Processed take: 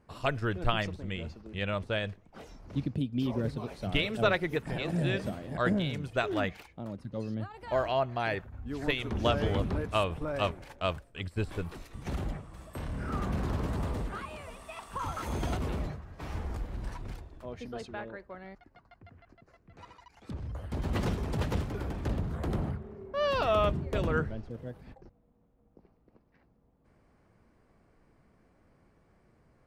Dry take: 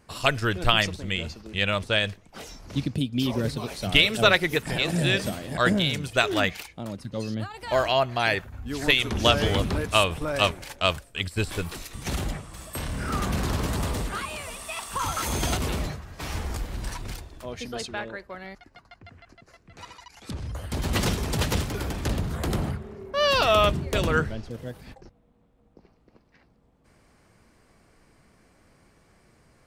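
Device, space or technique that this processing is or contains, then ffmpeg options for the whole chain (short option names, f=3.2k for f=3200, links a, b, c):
through cloth: -af "highshelf=f=2.5k:g=-15,volume=-4.5dB"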